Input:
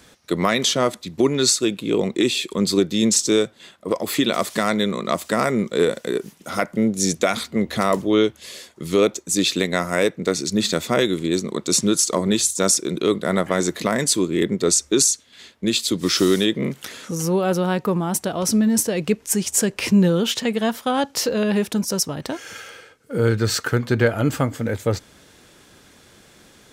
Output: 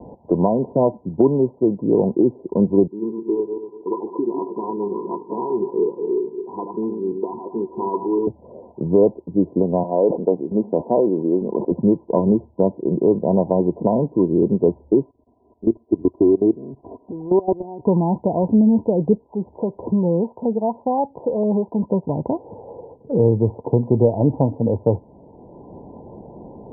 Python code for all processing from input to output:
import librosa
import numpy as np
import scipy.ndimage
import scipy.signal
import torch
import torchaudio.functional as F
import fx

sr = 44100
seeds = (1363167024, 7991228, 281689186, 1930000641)

y = fx.chain(x, sr, fx.reverse_delay_fb(ms=118, feedback_pct=42, wet_db=-6.0),
    fx.double_bandpass(hz=610.0, octaves=1.4), at=(2.87, 8.27))
y = fx.chain(y, sr, fx.highpass(hz=280.0, slope=12),
    fx.sustainer(db_per_s=100.0), at=(9.83, 11.71))
y = fx.chain(y, sr, fx.level_steps(step_db=19),
    fx.comb(ms=2.9, depth=0.67), at=(15.04, 17.87))
y = fx.chain(y, sr, fx.tilt_eq(slope=2.0),
    fx.harmonic_tremolo(hz=3.0, depth_pct=50, crossover_hz=570.0), at=(19.17, 21.82))
y = scipy.signal.sosfilt(scipy.signal.cheby1(10, 1.0, 1000.0, 'lowpass', fs=sr, output='sos'), y)
y = fx.band_squash(y, sr, depth_pct=40)
y = F.gain(torch.from_numpy(y), 4.5).numpy()